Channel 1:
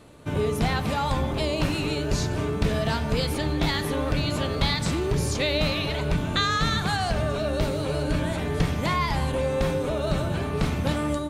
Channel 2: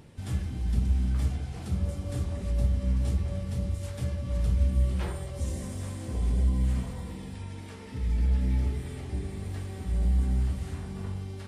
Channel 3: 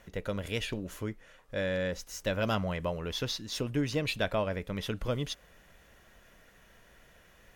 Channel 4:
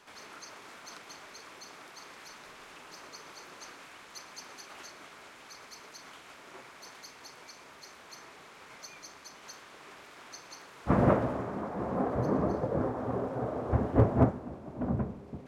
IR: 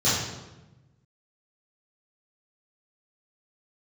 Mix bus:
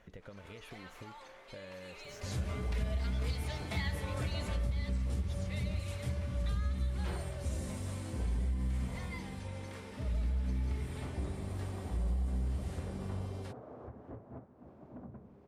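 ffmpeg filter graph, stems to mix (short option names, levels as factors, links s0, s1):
-filter_complex "[0:a]highpass=f=480:w=0.5412,highpass=f=480:w=1.3066,equalizer=f=2100:w=5.5:g=9,asplit=2[s0][s1];[s1]adelay=4.2,afreqshift=0.28[s2];[s0][s2]amix=inputs=2:normalize=1,adelay=100,volume=0.316,afade=t=in:st=1.8:d=0.74:silence=0.251189,afade=t=out:st=4.5:d=0.22:silence=0.298538[s3];[1:a]adelay=2050,volume=0.631[s4];[2:a]acompressor=threshold=0.01:ratio=6,volume=0.631[s5];[3:a]adelay=150,volume=0.316[s6];[s5][s6]amix=inputs=2:normalize=0,lowpass=f=2700:p=1,acompressor=threshold=0.00562:ratio=10,volume=1[s7];[s3][s4][s7]amix=inputs=3:normalize=0,acompressor=threshold=0.0316:ratio=6"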